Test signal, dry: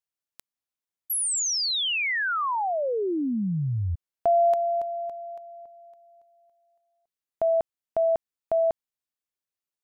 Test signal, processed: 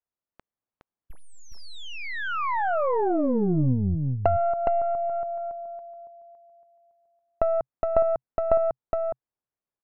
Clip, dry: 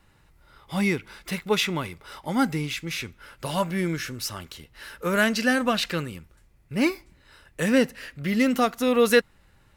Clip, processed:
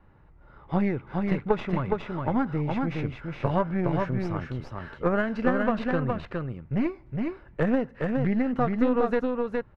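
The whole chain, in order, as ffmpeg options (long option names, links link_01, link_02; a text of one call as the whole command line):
ffmpeg -i in.wav -af "adynamicequalizer=threshold=0.00282:dfrequency=130:dqfactor=4.8:tfrequency=130:tqfactor=4.8:attack=5:release=100:ratio=0.375:range=4:mode=boostabove:tftype=bell,acompressor=threshold=-26dB:ratio=12:attack=28:release=568:knee=6:detection=peak,aeval=exprs='0.168*(cos(1*acos(clip(val(0)/0.168,-1,1)))-cos(1*PI/2))+0.0211*(cos(3*acos(clip(val(0)/0.168,-1,1)))-cos(3*PI/2))+0.0299*(cos(6*acos(clip(val(0)/0.168,-1,1)))-cos(6*PI/2))+0.015*(cos(8*acos(clip(val(0)/0.168,-1,1)))-cos(8*PI/2))':channel_layout=same,lowpass=1200,aecho=1:1:415:0.668,volume=8dB" out.wav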